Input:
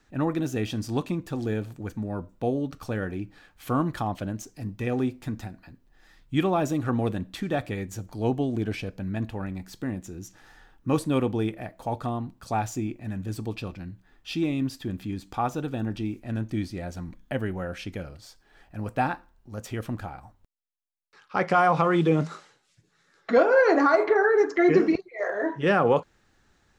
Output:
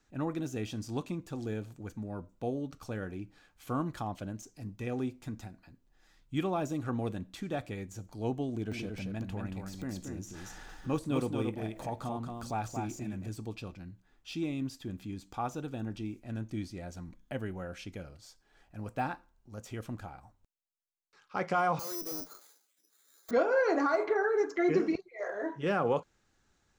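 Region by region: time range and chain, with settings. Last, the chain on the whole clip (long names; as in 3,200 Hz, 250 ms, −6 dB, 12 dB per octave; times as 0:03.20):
0:08.49–0:13.29: upward compression, threshold −27 dBFS + single-tap delay 228 ms −4.5 dB
0:21.79–0:23.31: Chebyshev high-pass filter 250 Hz, order 4 + tube saturation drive 28 dB, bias 0.45 + bad sample-rate conversion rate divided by 8×, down filtered, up zero stuff
whole clip: notch filter 1,800 Hz, Q 17; de-essing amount 90%; parametric band 6,800 Hz +5 dB 0.75 octaves; level −8 dB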